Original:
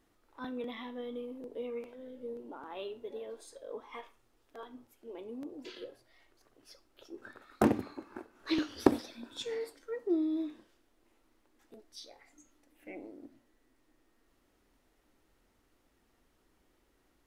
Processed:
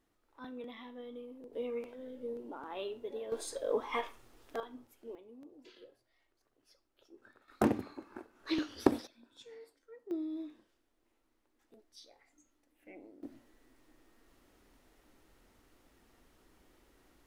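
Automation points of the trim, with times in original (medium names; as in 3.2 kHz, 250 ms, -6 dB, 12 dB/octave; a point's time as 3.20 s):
-6 dB
from 1.53 s +1 dB
from 3.32 s +10.5 dB
from 4.60 s +0.5 dB
from 5.15 s -11 dB
from 7.48 s -2.5 dB
from 9.07 s -15 dB
from 10.11 s -7 dB
from 13.23 s +5.5 dB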